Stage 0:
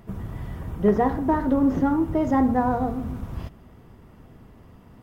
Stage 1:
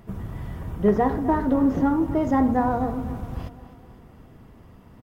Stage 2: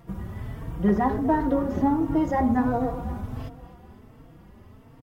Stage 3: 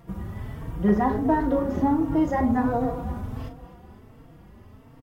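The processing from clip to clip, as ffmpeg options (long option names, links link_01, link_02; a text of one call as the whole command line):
ffmpeg -i in.wav -af "aecho=1:1:254|508|762|1016|1270:0.168|0.0907|0.049|0.0264|0.0143" out.wav
ffmpeg -i in.wav -filter_complex "[0:a]asplit=2[link_01][link_02];[link_02]adelay=3.9,afreqshift=1.4[link_03];[link_01][link_03]amix=inputs=2:normalize=1,volume=2dB" out.wav
ffmpeg -i in.wav -filter_complex "[0:a]asplit=2[link_01][link_02];[link_02]adelay=38,volume=-9dB[link_03];[link_01][link_03]amix=inputs=2:normalize=0" out.wav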